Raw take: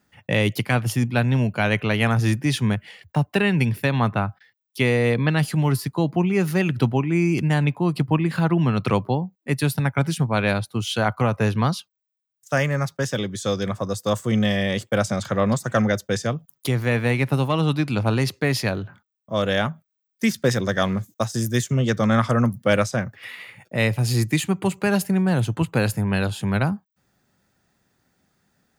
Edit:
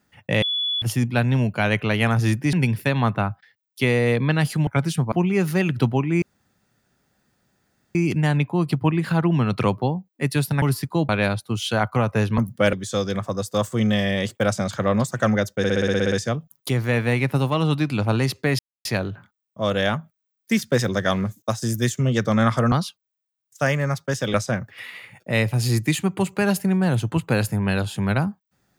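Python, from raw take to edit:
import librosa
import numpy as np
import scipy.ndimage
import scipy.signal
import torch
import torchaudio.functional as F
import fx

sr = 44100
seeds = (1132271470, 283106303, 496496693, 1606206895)

y = fx.edit(x, sr, fx.bleep(start_s=0.42, length_s=0.4, hz=3420.0, db=-21.0),
    fx.cut(start_s=2.53, length_s=0.98),
    fx.swap(start_s=5.65, length_s=0.47, other_s=9.89, other_length_s=0.45),
    fx.insert_room_tone(at_s=7.22, length_s=1.73),
    fx.swap(start_s=11.63, length_s=1.62, other_s=22.44, other_length_s=0.35),
    fx.stutter(start_s=16.1, slice_s=0.06, count=10),
    fx.insert_silence(at_s=18.57, length_s=0.26), tone=tone)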